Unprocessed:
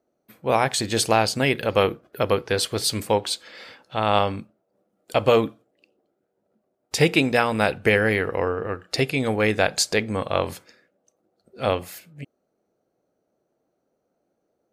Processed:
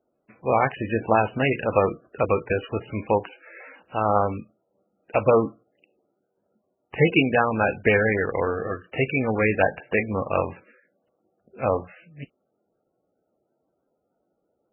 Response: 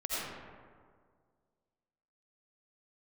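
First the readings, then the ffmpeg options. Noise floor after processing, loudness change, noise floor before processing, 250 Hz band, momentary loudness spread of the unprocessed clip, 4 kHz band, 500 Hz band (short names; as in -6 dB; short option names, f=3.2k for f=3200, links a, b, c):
-76 dBFS, -1.0 dB, -75 dBFS, -0.5 dB, 10 LU, -13.0 dB, -0.5 dB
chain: -ar 16000 -c:a libmp3lame -b:a 8k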